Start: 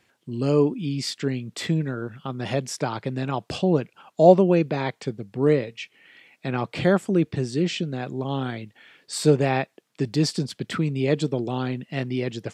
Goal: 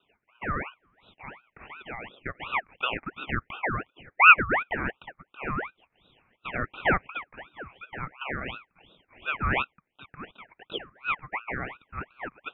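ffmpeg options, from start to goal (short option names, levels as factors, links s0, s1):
-af "asuperpass=centerf=930:order=20:qfactor=0.76,aeval=exprs='val(0)*sin(2*PI*1300*n/s+1300*0.55/2.8*sin(2*PI*2.8*n/s))':c=same,volume=1.41"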